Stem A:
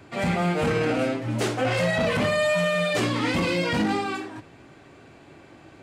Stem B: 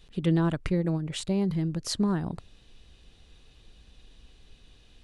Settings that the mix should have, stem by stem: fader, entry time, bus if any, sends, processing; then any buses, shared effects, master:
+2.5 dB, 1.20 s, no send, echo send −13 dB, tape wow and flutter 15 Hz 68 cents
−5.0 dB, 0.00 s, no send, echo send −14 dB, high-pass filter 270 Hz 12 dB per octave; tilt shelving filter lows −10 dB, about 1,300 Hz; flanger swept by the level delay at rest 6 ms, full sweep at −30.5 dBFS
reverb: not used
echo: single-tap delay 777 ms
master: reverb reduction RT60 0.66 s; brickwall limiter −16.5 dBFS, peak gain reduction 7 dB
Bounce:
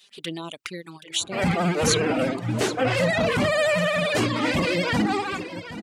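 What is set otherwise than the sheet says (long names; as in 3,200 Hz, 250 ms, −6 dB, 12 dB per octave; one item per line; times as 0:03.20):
stem B −5.0 dB → +4.5 dB
master: missing brickwall limiter −16.5 dBFS, peak gain reduction 7 dB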